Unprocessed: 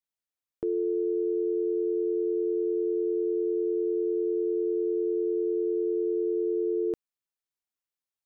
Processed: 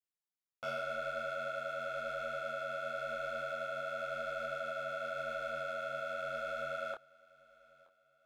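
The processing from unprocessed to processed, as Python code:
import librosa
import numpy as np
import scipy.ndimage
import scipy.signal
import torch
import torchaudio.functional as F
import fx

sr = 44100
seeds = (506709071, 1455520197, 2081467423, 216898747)

p1 = fx.dereverb_blind(x, sr, rt60_s=1.1)
p2 = p1 * np.sin(2.0 * np.pi * 1000.0 * np.arange(len(p1)) / sr)
p3 = np.clip(p2, -10.0 ** (-32.0 / 20.0), 10.0 ** (-32.0 / 20.0))
p4 = p3 + fx.echo_feedback(p3, sr, ms=924, feedback_pct=42, wet_db=-22, dry=0)
p5 = fx.detune_double(p4, sr, cents=32)
y = F.gain(torch.from_numpy(p5), 1.0).numpy()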